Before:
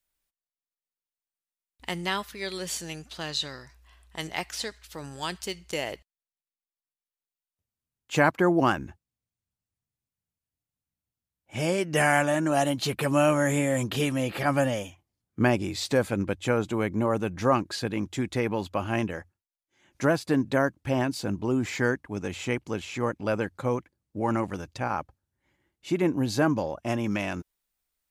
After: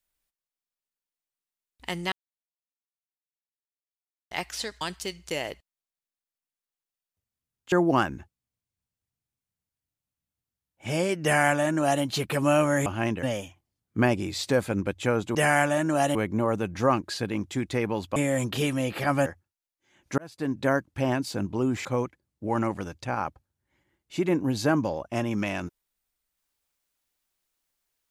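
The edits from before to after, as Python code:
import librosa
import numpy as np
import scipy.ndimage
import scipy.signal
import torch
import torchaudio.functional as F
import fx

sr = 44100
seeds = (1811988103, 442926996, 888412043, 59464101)

y = fx.edit(x, sr, fx.silence(start_s=2.12, length_s=2.19),
    fx.cut(start_s=4.81, length_s=0.42),
    fx.cut(start_s=8.14, length_s=0.27),
    fx.duplicate(start_s=11.92, length_s=0.8, to_s=16.77),
    fx.swap(start_s=13.55, length_s=1.1, other_s=18.78, other_length_s=0.37),
    fx.fade_in_span(start_s=20.07, length_s=0.51),
    fx.cut(start_s=21.74, length_s=1.84), tone=tone)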